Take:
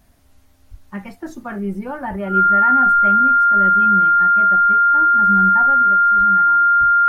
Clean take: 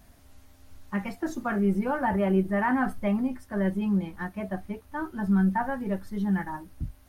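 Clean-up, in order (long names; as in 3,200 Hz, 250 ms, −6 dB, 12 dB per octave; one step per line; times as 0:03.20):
notch filter 1,400 Hz, Q 30
0:00.70–0:00.82: high-pass filter 140 Hz 24 dB per octave
0:02.09–0:02.21: high-pass filter 140 Hz 24 dB per octave
0:05.82: level correction +6 dB
0:06.17–0:06.29: high-pass filter 140 Hz 24 dB per octave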